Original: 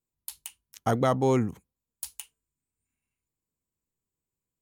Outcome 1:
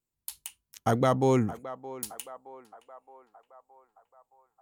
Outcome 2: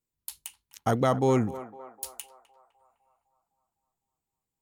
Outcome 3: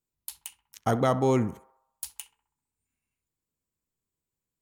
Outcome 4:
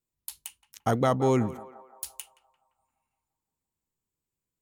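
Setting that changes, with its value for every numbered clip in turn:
feedback echo with a band-pass in the loop, delay time: 619, 254, 65, 172 milliseconds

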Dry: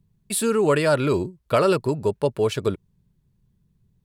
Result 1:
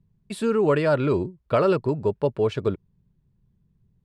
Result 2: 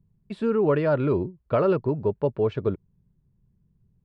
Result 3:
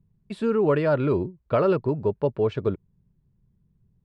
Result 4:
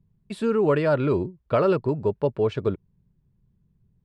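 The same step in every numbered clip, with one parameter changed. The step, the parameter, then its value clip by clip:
head-to-tape spacing loss, at 10 kHz: 20, 46, 37, 29 decibels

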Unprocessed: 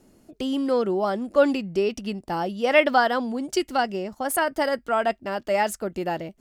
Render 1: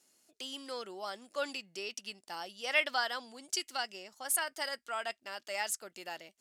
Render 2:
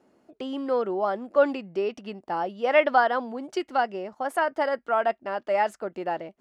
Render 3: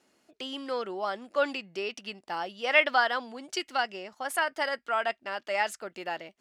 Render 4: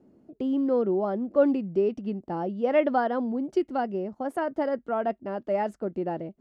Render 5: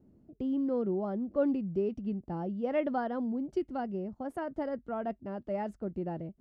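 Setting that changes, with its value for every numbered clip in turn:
resonant band-pass, frequency: 7,100, 920, 2,500, 280, 100 Hertz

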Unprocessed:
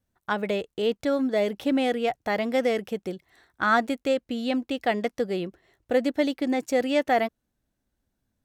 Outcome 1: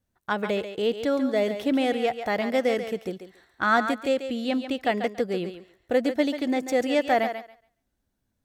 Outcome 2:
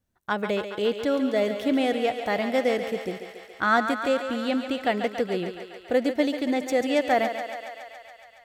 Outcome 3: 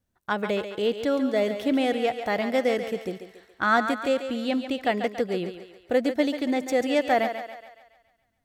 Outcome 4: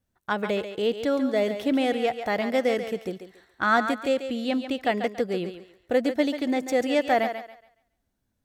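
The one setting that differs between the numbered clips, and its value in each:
feedback echo with a high-pass in the loop, feedback: 18, 77, 52, 29%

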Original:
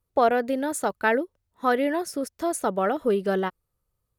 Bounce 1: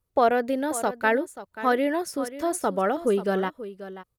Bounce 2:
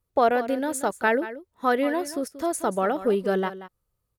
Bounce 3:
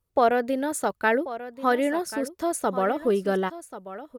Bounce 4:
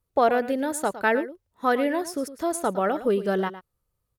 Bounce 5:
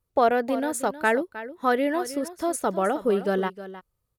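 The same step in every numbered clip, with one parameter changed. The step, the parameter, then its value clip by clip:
single-tap delay, delay time: 535, 182, 1,087, 110, 312 milliseconds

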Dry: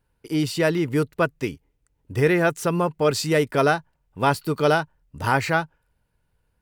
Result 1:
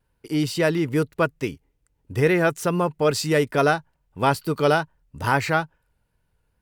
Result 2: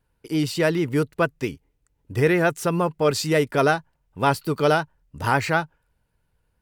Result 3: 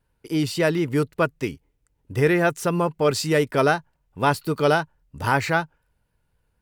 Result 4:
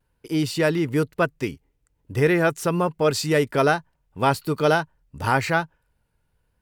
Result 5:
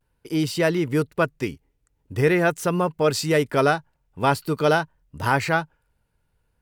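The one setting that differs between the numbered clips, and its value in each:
pitch vibrato, speed: 2.3, 9, 3.8, 1.1, 0.45 Hertz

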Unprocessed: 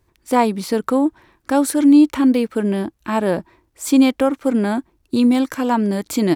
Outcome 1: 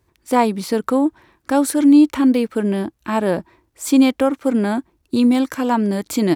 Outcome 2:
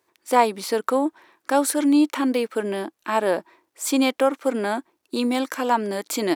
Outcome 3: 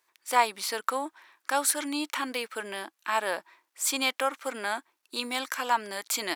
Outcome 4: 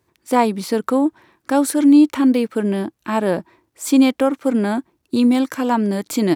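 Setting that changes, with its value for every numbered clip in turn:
high-pass filter, corner frequency: 42, 410, 1,100, 120 Hertz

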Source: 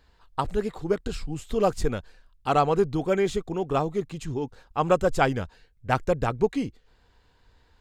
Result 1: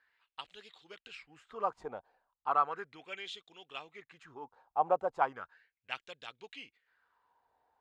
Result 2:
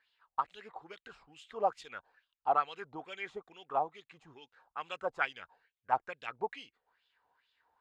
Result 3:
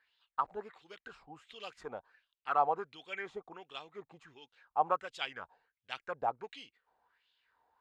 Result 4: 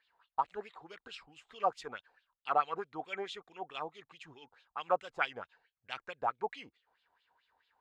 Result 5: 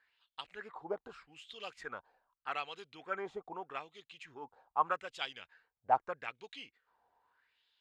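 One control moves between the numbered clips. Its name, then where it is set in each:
LFO wah, speed: 0.36, 2.3, 1.4, 4.6, 0.81 Hertz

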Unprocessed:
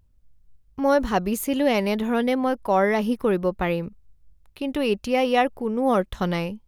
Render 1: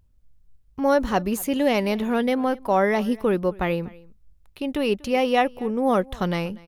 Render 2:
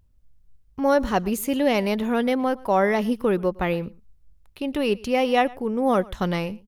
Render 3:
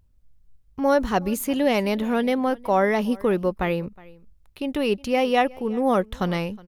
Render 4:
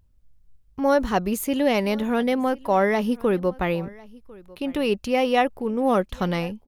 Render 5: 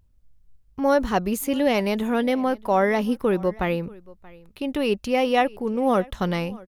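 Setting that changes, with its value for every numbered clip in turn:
single-tap delay, delay time: 241, 114, 365, 1,049, 630 milliseconds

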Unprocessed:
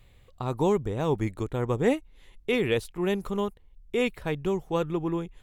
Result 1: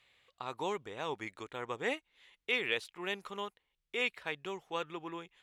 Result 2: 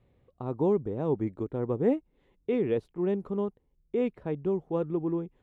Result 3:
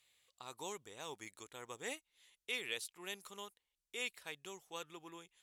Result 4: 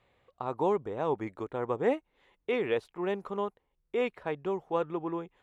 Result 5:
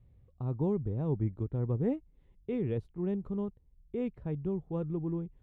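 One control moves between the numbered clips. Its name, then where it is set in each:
resonant band-pass, frequency: 2,600, 300, 7,900, 840, 110 Hertz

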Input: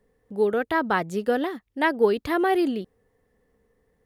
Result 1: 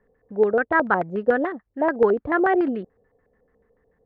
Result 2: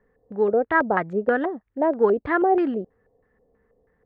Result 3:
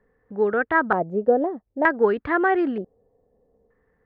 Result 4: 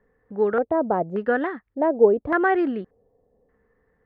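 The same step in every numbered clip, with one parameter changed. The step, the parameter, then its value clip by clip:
auto-filter low-pass, speed: 6.9, 3.1, 0.54, 0.86 Hertz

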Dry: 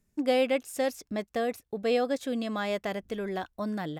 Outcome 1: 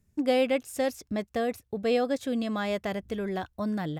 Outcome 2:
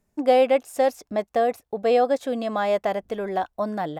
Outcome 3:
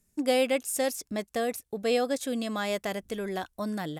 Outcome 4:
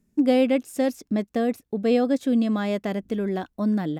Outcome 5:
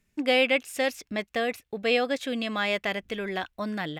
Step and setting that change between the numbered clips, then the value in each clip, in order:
parametric band, centre frequency: 89, 740, 10,000, 240, 2,500 Hertz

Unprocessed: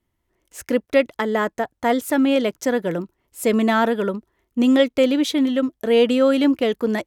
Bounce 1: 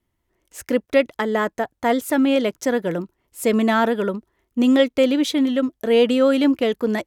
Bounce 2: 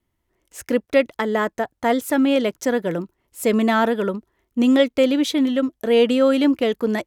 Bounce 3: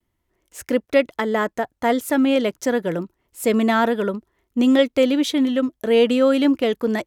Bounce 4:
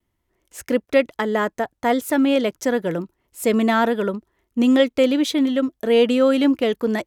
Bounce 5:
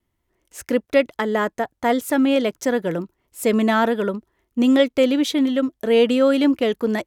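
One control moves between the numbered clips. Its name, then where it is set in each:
pitch vibrato, speed: 7.2, 3.6, 0.31, 0.59, 1.3 Hertz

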